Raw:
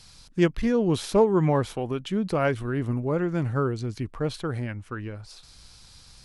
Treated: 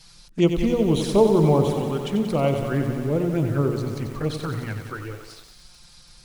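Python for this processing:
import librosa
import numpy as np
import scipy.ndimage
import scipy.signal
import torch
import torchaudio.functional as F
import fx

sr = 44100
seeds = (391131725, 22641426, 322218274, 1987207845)

y = fx.env_flanger(x, sr, rest_ms=6.7, full_db=-21.0)
y = fx.hum_notches(y, sr, base_hz=60, count=10)
y = fx.echo_crushed(y, sr, ms=92, feedback_pct=80, bits=8, wet_db=-8)
y = F.gain(torch.from_numpy(y), 4.0).numpy()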